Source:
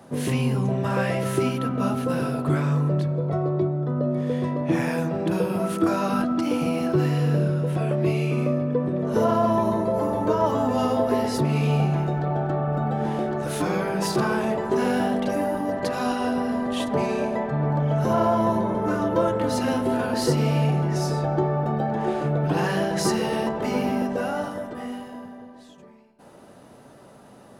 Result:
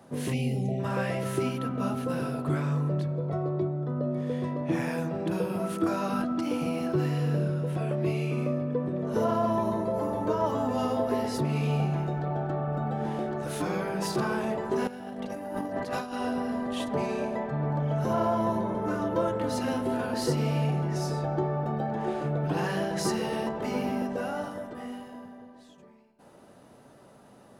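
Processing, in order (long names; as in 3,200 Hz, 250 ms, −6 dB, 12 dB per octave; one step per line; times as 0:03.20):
0:00.33–0:00.79: gain on a spectral selection 830–1,900 Hz −25 dB
0:14.87–0:16.14: compressor whose output falls as the input rises −28 dBFS, ratio −0.5
level −5.5 dB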